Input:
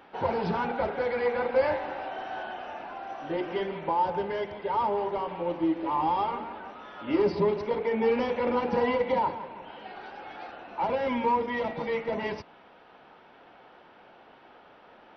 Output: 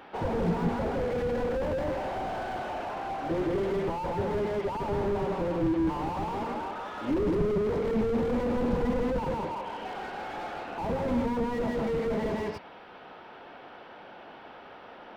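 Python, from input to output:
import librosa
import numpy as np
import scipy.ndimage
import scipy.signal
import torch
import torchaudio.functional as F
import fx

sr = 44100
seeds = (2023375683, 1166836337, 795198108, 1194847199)

y = fx.echo_multitap(x, sr, ms=(74, 162), db=(-14.5, -3.0))
y = fx.slew_limit(y, sr, full_power_hz=12.0)
y = y * librosa.db_to_amplitude(4.5)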